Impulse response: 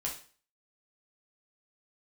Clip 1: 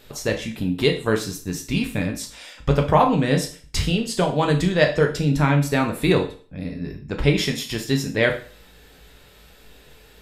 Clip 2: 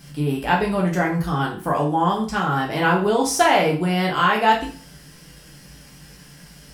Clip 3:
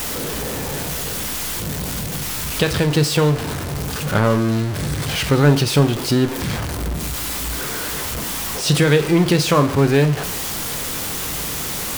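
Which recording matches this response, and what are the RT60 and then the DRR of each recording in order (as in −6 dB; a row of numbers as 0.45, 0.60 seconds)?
2; 0.40, 0.40, 0.40 seconds; 2.0, −2.5, 8.5 decibels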